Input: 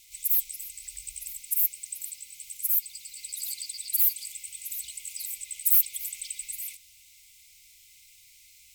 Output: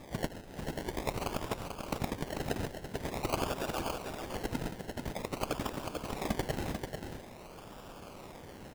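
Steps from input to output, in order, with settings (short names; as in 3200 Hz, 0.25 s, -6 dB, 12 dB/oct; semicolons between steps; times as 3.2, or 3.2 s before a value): treble ducked by the level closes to 2900 Hz, closed at -25 dBFS; 3.52–4.07 fixed phaser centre 2600 Hz, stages 8; 4.71–5.32 expander -34 dBFS; decimation with a swept rate 30×, swing 60% 0.48 Hz; echo 0.442 s -6 dB; gain +7 dB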